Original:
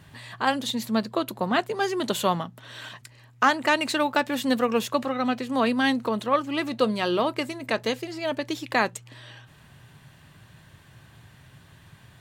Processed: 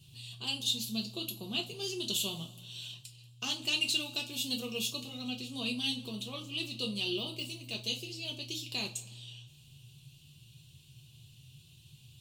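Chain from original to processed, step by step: 7.13–7.73 de-esser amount 85%; EQ curve 150 Hz 0 dB, 1900 Hz -27 dB, 2700 Hz +5 dB; two-slope reverb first 0.23 s, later 1.6 s, from -21 dB, DRR 0 dB; gain -8.5 dB

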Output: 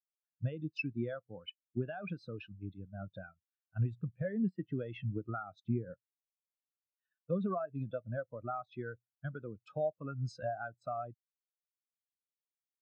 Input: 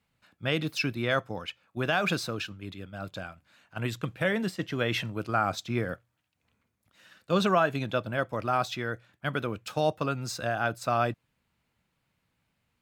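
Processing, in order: compressor 16:1, threshold -33 dBFS, peak gain reduction 15.5 dB; hard clip -25.5 dBFS, distortion -26 dB; spectral expander 2.5:1; gain +3.5 dB

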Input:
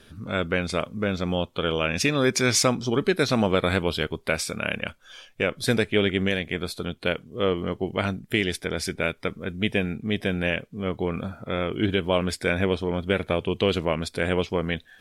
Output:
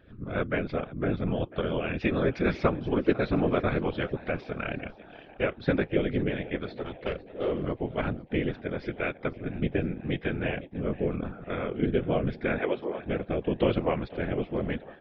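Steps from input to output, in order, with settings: 6.77–7.52 minimum comb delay 2.3 ms; 12.58–13.06 HPF 320 Hz 24 dB/oct; rotary speaker horn 6.7 Hz, later 0.85 Hz, at 3.78; Gaussian blur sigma 3.2 samples; frequency-shifting echo 0.499 s, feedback 52%, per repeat +75 Hz, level -19 dB; whisperiser; gain -1 dB

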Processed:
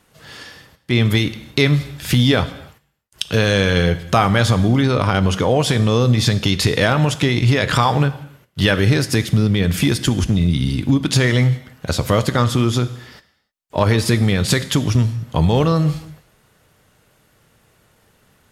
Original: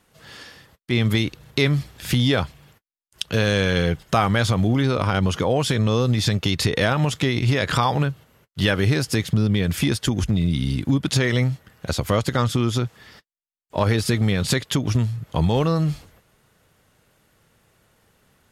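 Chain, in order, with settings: non-linear reverb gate 0.33 s falling, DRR 12 dB; gain +4 dB

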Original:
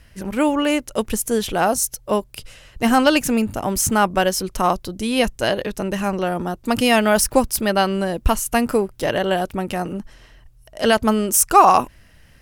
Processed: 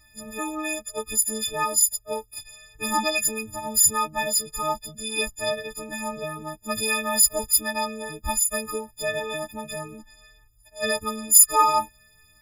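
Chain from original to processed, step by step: frequency quantiser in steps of 6 st; cascading flanger falling 1.7 Hz; gain -7.5 dB

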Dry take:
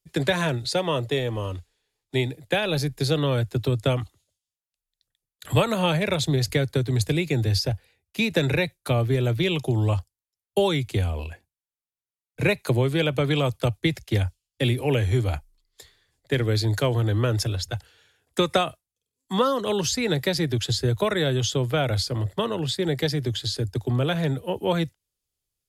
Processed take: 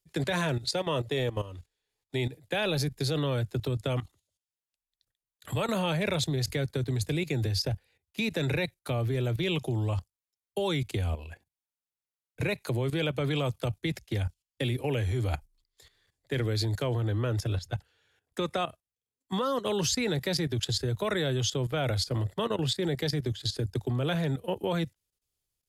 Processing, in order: 16.84–19.34 high shelf 3600 Hz -5 dB; level quantiser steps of 14 dB

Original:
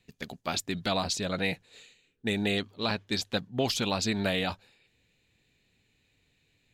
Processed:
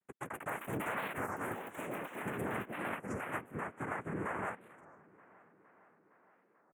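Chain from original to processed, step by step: treble ducked by the level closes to 690 Hz, closed at -24.5 dBFS; three-band isolator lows -16 dB, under 410 Hz, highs -22 dB, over 2400 Hz; comb 1.4 ms, depth 38%; dynamic EQ 220 Hz, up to +5 dB, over -58 dBFS, Q 4.1; compressor 16:1, threshold -43 dBFS, peak gain reduction 16 dB; sample leveller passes 5; noise vocoder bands 3; on a send: tape echo 0.463 s, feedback 77%, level -20 dB, low-pass 4500 Hz; on the sum: echoes that change speed 0.189 s, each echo +6 st, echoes 3; Butterworth band-stop 4700 Hz, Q 0.65; record warp 33 1/3 rpm, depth 250 cents; gain -4 dB

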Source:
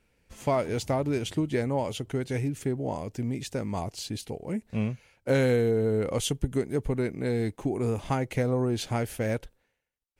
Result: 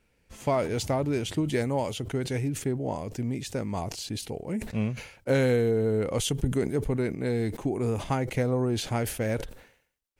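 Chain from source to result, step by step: 1.48–1.91 high shelf 4000 Hz +7 dB; sustainer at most 96 dB/s

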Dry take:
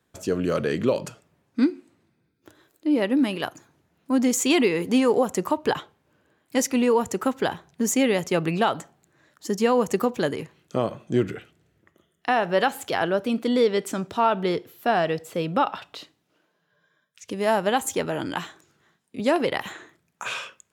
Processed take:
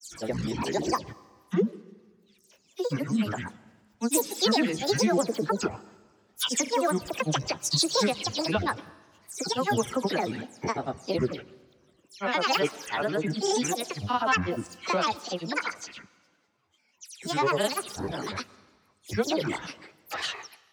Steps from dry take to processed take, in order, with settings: spectral delay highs early, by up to 0.15 s; grains, spray 0.1 s, pitch spread up and down by 12 st; bell 5700 Hz +10 dB 1.4 oct; on a send: reverb RT60 1.6 s, pre-delay 0.102 s, DRR 21.5 dB; on the sum: gain -3.5 dB

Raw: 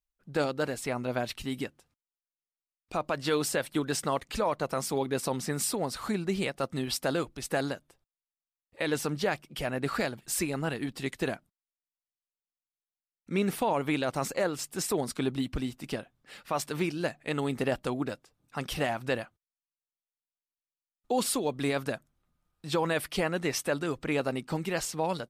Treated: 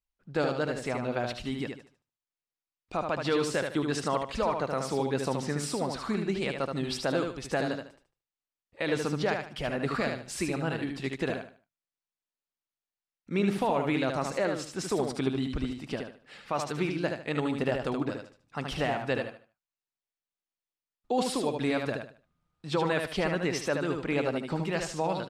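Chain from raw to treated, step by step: air absorption 70 m; feedback echo 75 ms, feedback 28%, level -5 dB

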